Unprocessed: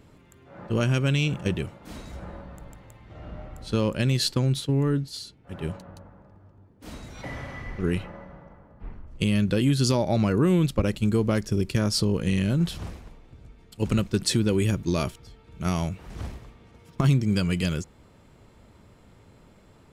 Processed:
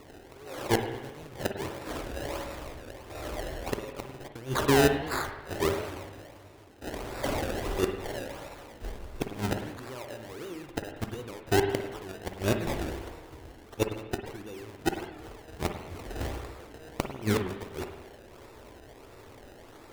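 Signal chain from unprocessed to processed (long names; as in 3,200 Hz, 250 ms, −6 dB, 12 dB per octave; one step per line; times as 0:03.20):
low shelf with overshoot 270 Hz −7.5 dB, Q 1.5
gate with flip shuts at −19 dBFS, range −24 dB
low-pass filter 9,300 Hz 12 dB per octave
noise that follows the level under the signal 15 dB
sample-and-hold swept by an LFO 27×, swing 100% 1.5 Hz
parametric band 180 Hz −8.5 dB 0.35 octaves
spring reverb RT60 1.1 s, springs 48/53 ms, chirp 65 ms, DRR 5.5 dB
wow of a warped record 78 rpm, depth 160 cents
level +6.5 dB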